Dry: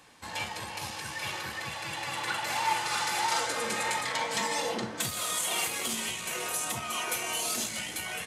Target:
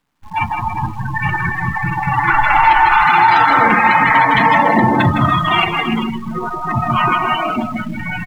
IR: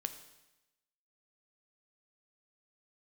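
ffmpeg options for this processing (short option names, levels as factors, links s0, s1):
-filter_complex "[1:a]atrim=start_sample=2205[s0];[0:a][s0]afir=irnorm=-1:irlink=0,adynamicsmooth=sensitivity=3:basefreq=910,asettb=1/sr,asplit=3[s1][s2][s3];[s1]atrim=end=4.874[s4];[s2]atrim=start=4.87:end=5.34,asetpts=PTS-STARTPTS,afade=t=in:d=0.004:c=qsin,afade=t=out:st=0.466:d=0.004:c=qsin,aeval=exprs='0.0562*(cos(1*acos(clip(val(0)/0.0562,-1,1)))-cos(1*PI/2))+0.00708*(cos(5*acos(clip(val(0)/0.0562,-1,1)))-cos(5*PI/2))':c=same[s5];[s3]atrim=start=5.336[s6];[s4][s5]acrossfade=d=0.004:c1=hsin:c2=qsin[s7];[s7][s6]acrossfade=d=0.004:c1=qsin:c2=hsin,asettb=1/sr,asplit=3[s8][s9][s10];[s8]atrim=end=6.044[s11];[s9]atrim=start=6.04:end=6.66,asetpts=PTS-STARTPTS,afade=t=in:d=0.004:c=qsin,afade=t=out:st=0.616:d=0.004:c=qsin,lowpass=1400[s12];[s10]atrim=start=6.656[s13];[s11][s12]acrossfade=d=0.004:c1=hsin:c2=qsin[s14];[s14][s13]acrossfade=d=0.004:c1=qsin:c2=hsin,acrusher=bits=8:dc=4:mix=0:aa=0.000001,equalizer=f=510:w=1.9:g=-10.5,aecho=1:1:160|288|390.4|472.3|537.9:0.631|0.398|0.251|0.158|0.1,asplit=3[s15][s16][s17];[s15]afade=t=out:st=2.3:d=0.02[s18];[s16]asubboost=boost=8.5:cutoff=51,afade=t=in:st=2.3:d=0.02,afade=t=out:st=3.04:d=0.02[s19];[s17]afade=t=in:st=3.04:d=0.02[s20];[s18][s19][s20]amix=inputs=3:normalize=0,afftdn=nr=28:nf=-35,alimiter=level_in=21.1:limit=0.891:release=50:level=0:latency=1,volume=0.891"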